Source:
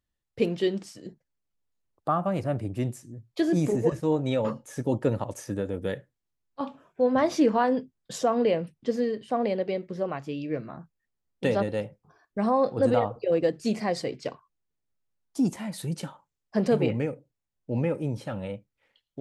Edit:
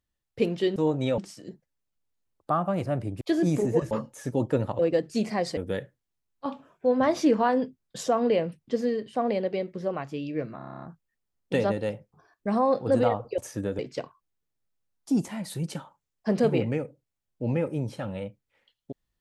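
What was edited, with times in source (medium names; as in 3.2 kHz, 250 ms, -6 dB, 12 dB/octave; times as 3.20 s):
2.79–3.31 s: delete
4.01–4.43 s: move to 0.76 s
5.31–5.72 s: swap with 13.29–14.07 s
10.73 s: stutter 0.03 s, 9 plays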